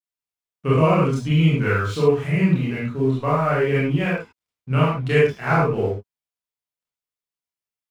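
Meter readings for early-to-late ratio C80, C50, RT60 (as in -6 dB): 4.0 dB, -0.5 dB, no single decay rate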